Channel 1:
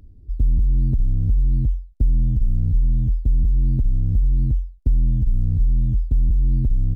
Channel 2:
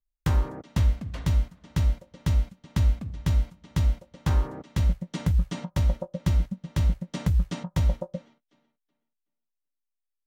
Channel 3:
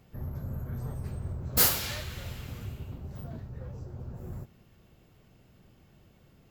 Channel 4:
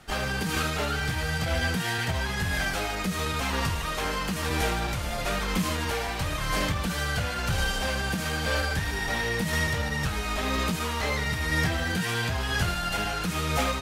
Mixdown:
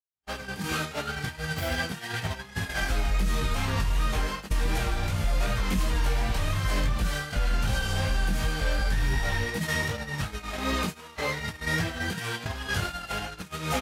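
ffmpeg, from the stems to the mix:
ffmpeg -i stem1.wav -i stem2.wav -i stem3.wav -i stem4.wav -filter_complex "[0:a]adelay=2500,volume=-4.5dB[link_01];[2:a]volume=-18dB[link_02];[3:a]highpass=51,adelay=150,volume=2.5dB[link_03];[link_01][link_02][link_03]amix=inputs=3:normalize=0,flanger=delay=18.5:depth=2.5:speed=2.7,agate=range=-49dB:threshold=-28dB:ratio=16:detection=peak,alimiter=limit=-17dB:level=0:latency=1:release=198" out.wav

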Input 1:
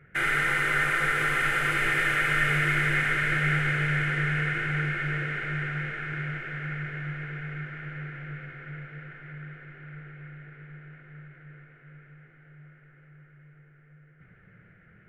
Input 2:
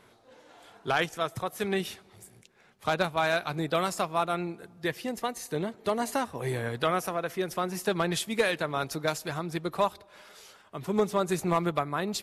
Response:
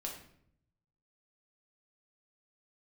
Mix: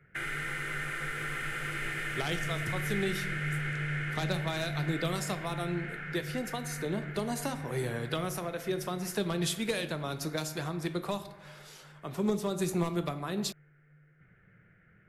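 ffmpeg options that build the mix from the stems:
-filter_complex "[0:a]volume=-6dB[link_01];[1:a]adelay=1300,volume=-4dB,asplit=2[link_02][link_03];[link_03]volume=-3.5dB[link_04];[2:a]atrim=start_sample=2205[link_05];[link_04][link_05]afir=irnorm=-1:irlink=0[link_06];[link_01][link_02][link_06]amix=inputs=3:normalize=0,acrossover=split=370|3000[link_07][link_08][link_09];[link_08]acompressor=threshold=-36dB:ratio=6[link_10];[link_07][link_10][link_09]amix=inputs=3:normalize=0"

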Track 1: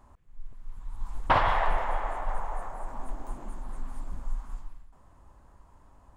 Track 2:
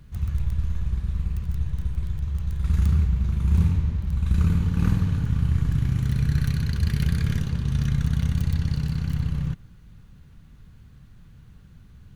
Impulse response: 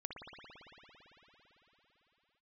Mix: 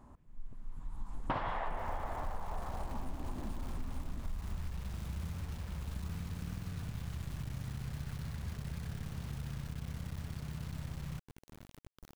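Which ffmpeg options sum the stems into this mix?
-filter_complex "[0:a]equalizer=frequency=210:width_type=o:width=1.9:gain=10,volume=-4dB,asplit=2[link_01][link_02];[link_02]volume=-15.5dB[link_03];[1:a]acrossover=split=220|1700[link_04][link_05][link_06];[link_04]acompressor=threshold=-31dB:ratio=4[link_07];[link_05]acompressor=threshold=-45dB:ratio=4[link_08];[link_06]acompressor=threshold=-56dB:ratio=4[link_09];[link_07][link_08][link_09]amix=inputs=3:normalize=0,acrusher=bits=6:mix=0:aa=0.000001,adelay=1650,volume=-8dB[link_10];[2:a]atrim=start_sample=2205[link_11];[link_03][link_11]afir=irnorm=-1:irlink=0[link_12];[link_01][link_10][link_12]amix=inputs=3:normalize=0,acompressor=threshold=-34dB:ratio=4"

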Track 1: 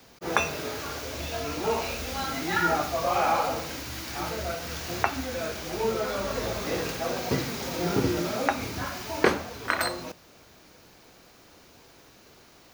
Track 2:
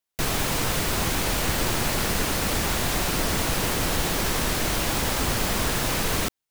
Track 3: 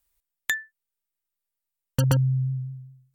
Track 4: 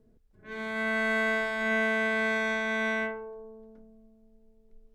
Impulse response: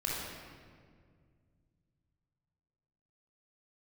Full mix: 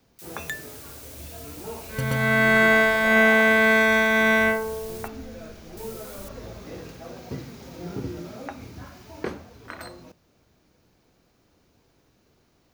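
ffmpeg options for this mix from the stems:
-filter_complex "[0:a]lowshelf=frequency=400:gain=10.5,volume=-14dB[link_01];[1:a]aderivative,volume=-16.5dB,asplit=3[link_02][link_03][link_04];[link_02]atrim=end=5.08,asetpts=PTS-STARTPTS,afade=type=out:start_time=5.076:duration=0.004:curve=hsin[link_05];[link_03]atrim=start=5.08:end=5.77,asetpts=PTS-STARTPTS,volume=0[link_06];[link_04]atrim=start=5.77,asetpts=PTS-STARTPTS,afade=type=in:duration=0.004:curve=hsin[link_07];[link_05][link_06][link_07]concat=n=3:v=0:a=1[link_08];[2:a]volume=-7dB[link_09];[3:a]dynaudnorm=framelen=130:gausssize=11:maxgain=8dB,adelay=1450,volume=2dB[link_10];[link_01][link_08][link_09][link_10]amix=inputs=4:normalize=0"

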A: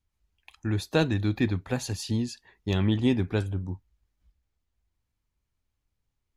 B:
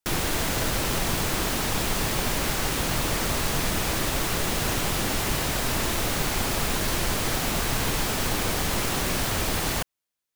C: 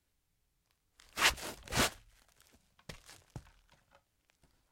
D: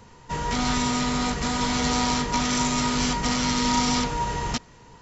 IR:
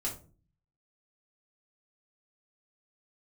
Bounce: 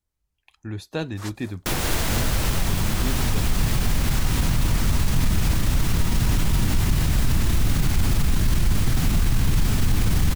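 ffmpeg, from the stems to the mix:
-filter_complex "[0:a]volume=-4.5dB[link_01];[1:a]asubboost=boost=8:cutoff=180,alimiter=limit=-9dB:level=0:latency=1:release=17,adelay=1600,volume=2.5dB[link_02];[2:a]equalizer=frequency=2600:width_type=o:width=0.89:gain=-13.5,volume=-6dB[link_03];[3:a]adelay=2350,volume=-12.5dB[link_04];[link_01][link_02][link_03][link_04]amix=inputs=4:normalize=0,alimiter=limit=-11.5dB:level=0:latency=1:release=226"

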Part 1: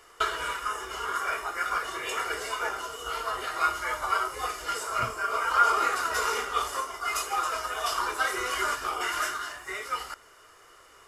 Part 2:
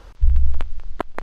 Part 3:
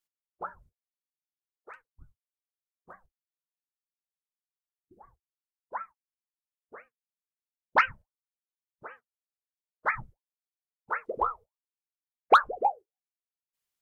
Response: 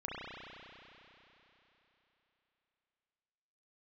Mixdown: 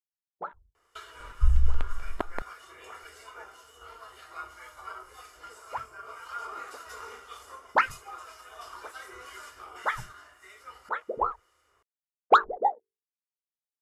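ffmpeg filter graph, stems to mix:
-filter_complex "[0:a]equalizer=frequency=77:width_type=o:width=0.26:gain=14.5,acrossover=split=1900[link_01][link_02];[link_01]aeval=exprs='val(0)*(1-0.5/2+0.5/2*cos(2*PI*1.9*n/s))':channel_layout=same[link_03];[link_02]aeval=exprs='val(0)*(1-0.5/2-0.5/2*cos(2*PI*1.9*n/s))':channel_layout=same[link_04];[link_03][link_04]amix=inputs=2:normalize=0,adelay=750,volume=-14.5dB,asplit=2[link_05][link_06];[link_06]volume=-16dB[link_07];[1:a]adelay=1200,volume=-5.5dB[link_08];[2:a]bandreject=frequency=50:width_type=h:width=6,bandreject=frequency=100:width_type=h:width=6,bandreject=frequency=150:width_type=h:width=6,bandreject=frequency=200:width_type=h:width=6,bandreject=frequency=250:width_type=h:width=6,bandreject=frequency=300:width_type=h:width=6,bandreject=frequency=350:width_type=h:width=6,bandreject=frequency=400:width_type=h:width=6,bandreject=frequency=450:width_type=h:width=6,afwtdn=0.00562,equalizer=frequency=2200:width=1.1:gain=-5,volume=1.5dB[link_09];[3:a]atrim=start_sample=2205[link_10];[link_07][link_10]afir=irnorm=-1:irlink=0[link_11];[link_05][link_08][link_09][link_11]amix=inputs=4:normalize=0"

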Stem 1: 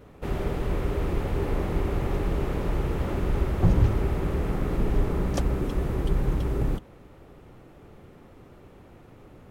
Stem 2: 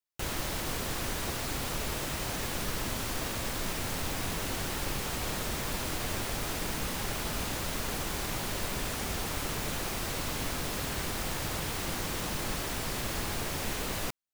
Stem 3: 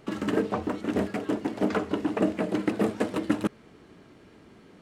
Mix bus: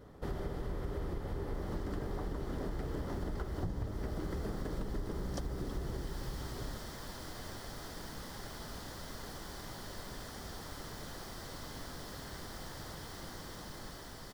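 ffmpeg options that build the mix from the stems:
ffmpeg -i stem1.wav -i stem2.wav -i stem3.wav -filter_complex "[0:a]volume=-5dB,afade=type=out:start_time=5.9:duration=0.22:silence=0.281838[link_01];[1:a]dynaudnorm=framelen=410:gausssize=11:maxgain=8dB,highshelf=frequency=4500:gain=-6,adelay=1350,volume=-18.5dB[link_02];[2:a]acompressor=threshold=-26dB:ratio=6,adelay=1650,volume=-6.5dB[link_03];[link_01][link_02][link_03]amix=inputs=3:normalize=0,superequalizer=12b=0.355:14b=1.58,acompressor=threshold=-34dB:ratio=8" out.wav

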